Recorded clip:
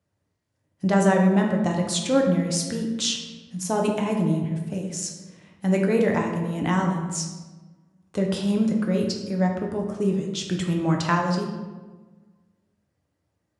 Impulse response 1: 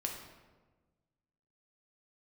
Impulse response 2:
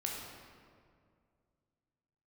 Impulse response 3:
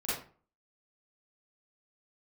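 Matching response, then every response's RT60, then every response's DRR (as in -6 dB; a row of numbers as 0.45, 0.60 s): 1; 1.3, 2.2, 0.40 s; 0.5, -2.0, -11.5 dB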